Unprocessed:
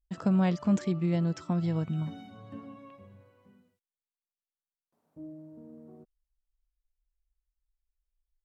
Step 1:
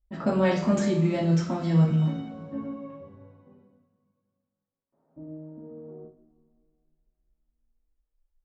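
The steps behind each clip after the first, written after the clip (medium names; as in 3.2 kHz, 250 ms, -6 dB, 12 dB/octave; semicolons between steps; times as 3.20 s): level-controlled noise filter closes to 1 kHz, open at -25 dBFS; two-slope reverb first 0.44 s, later 2.5 s, from -21 dB, DRR -7 dB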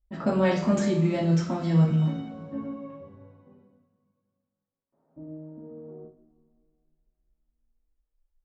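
no audible change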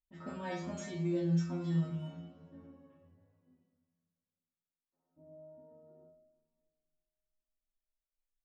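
inharmonic resonator 85 Hz, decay 0.7 s, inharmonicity 0.002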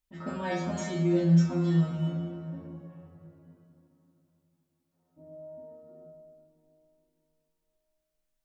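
plate-style reverb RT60 3.7 s, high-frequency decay 0.4×, DRR 7.5 dB; trim +7.5 dB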